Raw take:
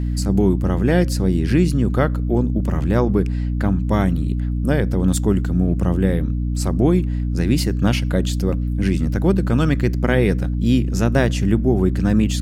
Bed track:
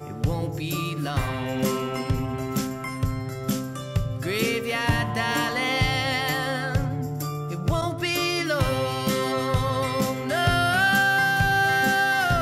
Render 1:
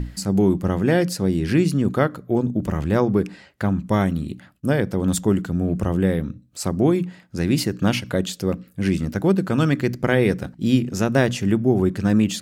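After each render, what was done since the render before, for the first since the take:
mains-hum notches 60/120/180/240/300 Hz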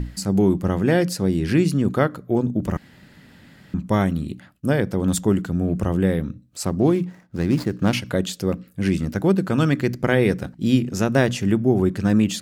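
0:02.77–0:03.74: fill with room tone
0:06.65–0:07.93: running median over 15 samples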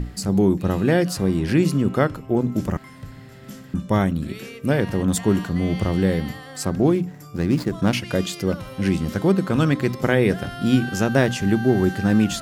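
mix in bed track −13 dB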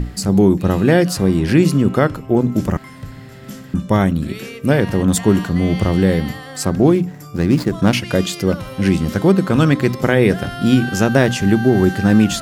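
level +5.5 dB
brickwall limiter −2 dBFS, peak gain reduction 2.5 dB

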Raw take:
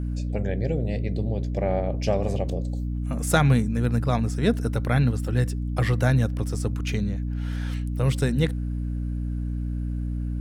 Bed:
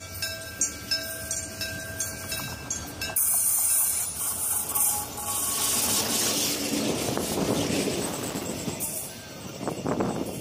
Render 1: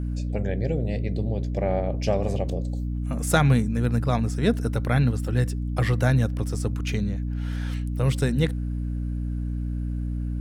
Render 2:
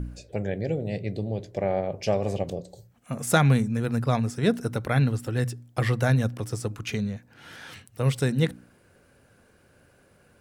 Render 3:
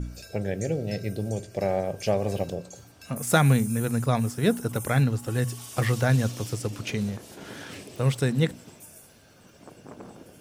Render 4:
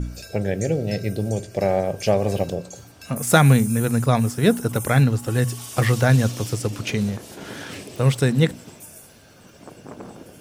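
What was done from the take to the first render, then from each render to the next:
no processing that can be heard
hum removal 60 Hz, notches 5
mix in bed −17 dB
level +5.5 dB

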